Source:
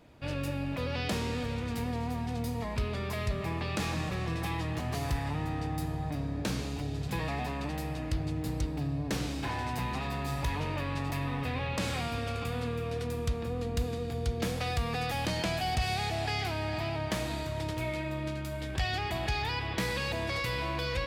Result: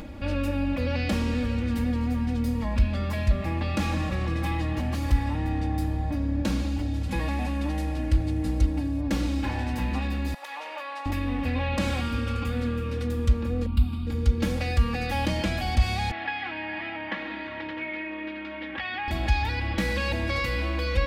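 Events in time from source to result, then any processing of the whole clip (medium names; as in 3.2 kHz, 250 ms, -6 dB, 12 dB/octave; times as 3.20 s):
6.93–9.01 s: CVSD coder 64 kbps
10.34–11.06 s: ladder high-pass 590 Hz, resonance 30%
13.66–14.07 s: static phaser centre 1.8 kHz, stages 6
16.11–19.08 s: cabinet simulation 380–3200 Hz, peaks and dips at 390 Hz -5 dB, 620 Hz -8 dB, 1.8 kHz +6 dB
whole clip: tone controls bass +8 dB, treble -4 dB; comb 3.6 ms, depth 99%; upward compressor, threshold -29 dBFS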